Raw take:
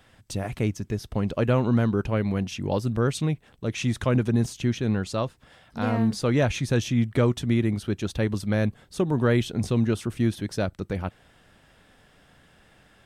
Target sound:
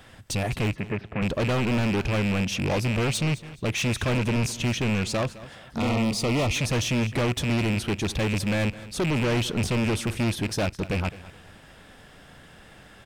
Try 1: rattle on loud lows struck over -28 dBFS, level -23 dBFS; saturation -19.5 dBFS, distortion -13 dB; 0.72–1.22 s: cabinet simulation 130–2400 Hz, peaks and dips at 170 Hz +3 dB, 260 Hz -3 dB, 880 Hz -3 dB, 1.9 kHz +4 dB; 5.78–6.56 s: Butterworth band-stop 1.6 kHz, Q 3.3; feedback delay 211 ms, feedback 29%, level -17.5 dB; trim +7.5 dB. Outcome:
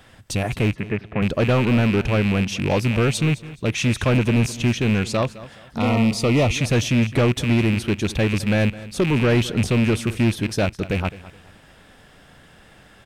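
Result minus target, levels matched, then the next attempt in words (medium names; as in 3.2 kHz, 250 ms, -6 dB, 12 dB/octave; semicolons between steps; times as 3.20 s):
saturation: distortion -7 dB
rattle on loud lows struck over -28 dBFS, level -23 dBFS; saturation -29 dBFS, distortion -6 dB; 0.72–1.22 s: cabinet simulation 130–2400 Hz, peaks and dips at 170 Hz +3 dB, 260 Hz -3 dB, 880 Hz -3 dB, 1.9 kHz +4 dB; 5.78–6.56 s: Butterworth band-stop 1.6 kHz, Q 3.3; feedback delay 211 ms, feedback 29%, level -17.5 dB; trim +7.5 dB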